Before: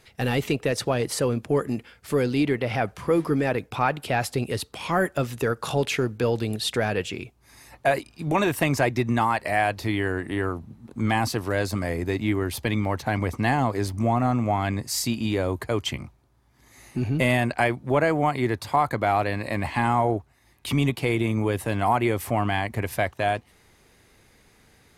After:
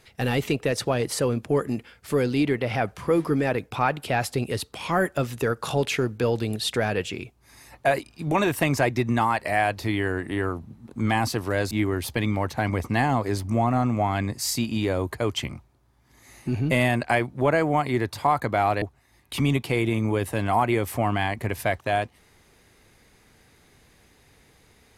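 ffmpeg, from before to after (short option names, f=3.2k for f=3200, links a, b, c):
-filter_complex "[0:a]asplit=3[a][b][c];[a]atrim=end=11.712[d];[b]atrim=start=12.198:end=19.312[e];[c]atrim=start=20.148[f];[d][e]acrossfade=d=0.004:c1=hsin:c2=hsin[g];[g][f]acrossfade=d=0.004:c1=hsin:c2=hsin"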